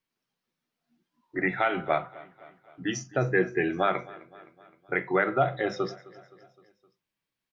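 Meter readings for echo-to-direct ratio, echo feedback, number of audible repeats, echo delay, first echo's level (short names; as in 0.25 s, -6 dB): -19.5 dB, 57%, 3, 0.259 s, -21.0 dB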